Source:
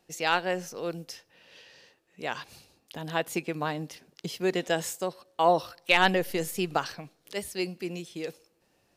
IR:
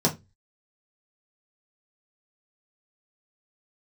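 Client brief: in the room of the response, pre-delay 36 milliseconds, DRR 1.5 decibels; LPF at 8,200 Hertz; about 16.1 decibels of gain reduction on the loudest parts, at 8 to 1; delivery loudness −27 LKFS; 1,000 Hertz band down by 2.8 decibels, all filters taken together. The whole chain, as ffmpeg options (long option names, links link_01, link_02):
-filter_complex "[0:a]lowpass=8200,equalizer=frequency=1000:width_type=o:gain=-4,acompressor=threshold=-35dB:ratio=8,asplit=2[link_01][link_02];[1:a]atrim=start_sample=2205,adelay=36[link_03];[link_02][link_03]afir=irnorm=-1:irlink=0,volume=-14dB[link_04];[link_01][link_04]amix=inputs=2:normalize=0,volume=7.5dB"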